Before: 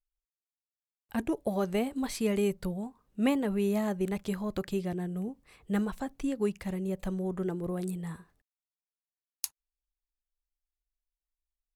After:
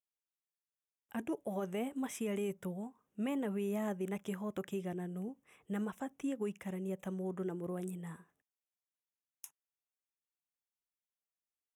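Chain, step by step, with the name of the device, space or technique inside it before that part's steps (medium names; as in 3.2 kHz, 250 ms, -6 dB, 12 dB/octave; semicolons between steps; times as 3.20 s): PA system with an anti-feedback notch (high-pass 160 Hz 12 dB/octave; Butterworth band-stop 4.4 kHz, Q 2.2; peak limiter -24 dBFS, peak gain reduction 11.5 dB); trim -5 dB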